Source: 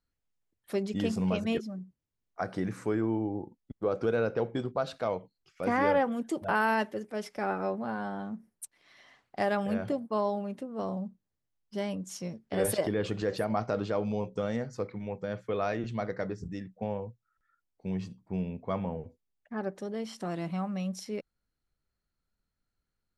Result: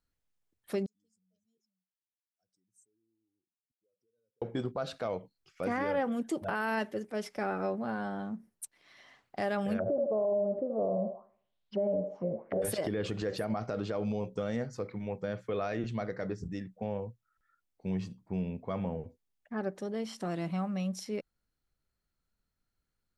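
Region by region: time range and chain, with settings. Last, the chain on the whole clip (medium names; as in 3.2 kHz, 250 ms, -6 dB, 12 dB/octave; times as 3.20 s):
0.86–4.42 s: spectral contrast enhancement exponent 1.8 + inverse Chebyshev high-pass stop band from 2.8 kHz, stop band 50 dB
9.78–12.62 s: feedback echo behind a band-pass 77 ms, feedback 40%, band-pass 880 Hz, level -4.5 dB + touch-sensitive low-pass 580–4000 Hz down, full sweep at -34 dBFS
whole clip: dynamic bell 950 Hz, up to -4 dB, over -45 dBFS, Q 3.1; peak limiter -23.5 dBFS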